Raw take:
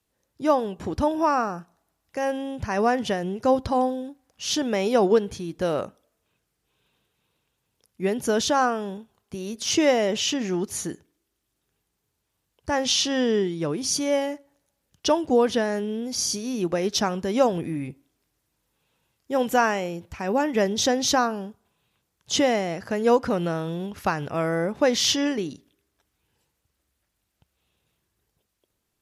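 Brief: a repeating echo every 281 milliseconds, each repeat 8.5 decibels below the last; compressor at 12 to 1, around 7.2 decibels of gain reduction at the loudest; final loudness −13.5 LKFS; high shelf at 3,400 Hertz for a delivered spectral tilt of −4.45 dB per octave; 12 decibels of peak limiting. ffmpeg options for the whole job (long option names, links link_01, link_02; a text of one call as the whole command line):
ffmpeg -i in.wav -af "highshelf=frequency=3400:gain=-6.5,acompressor=threshold=-21dB:ratio=12,alimiter=level_in=1dB:limit=-24dB:level=0:latency=1,volume=-1dB,aecho=1:1:281|562|843|1124:0.376|0.143|0.0543|0.0206,volume=19.5dB" out.wav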